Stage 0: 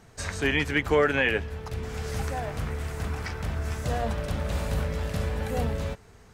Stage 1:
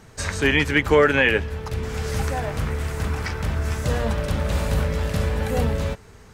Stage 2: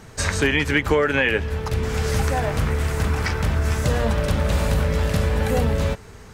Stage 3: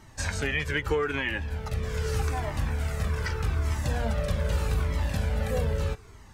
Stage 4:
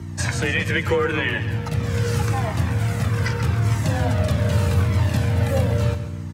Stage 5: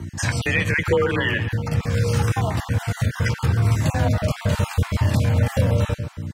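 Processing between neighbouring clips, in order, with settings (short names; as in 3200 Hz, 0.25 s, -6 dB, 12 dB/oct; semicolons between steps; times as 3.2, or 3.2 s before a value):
notch 710 Hz, Q 12; gain +6 dB
compressor 5:1, threshold -20 dBFS, peak gain reduction 8.5 dB; gain +4.5 dB
cascading flanger falling 0.81 Hz; gain -4 dB
hum 60 Hz, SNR 10 dB; frequency shift +34 Hz; feedback echo 0.136 s, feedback 40%, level -11.5 dB; gain +6 dB
random spectral dropouts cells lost 24%; gain +1.5 dB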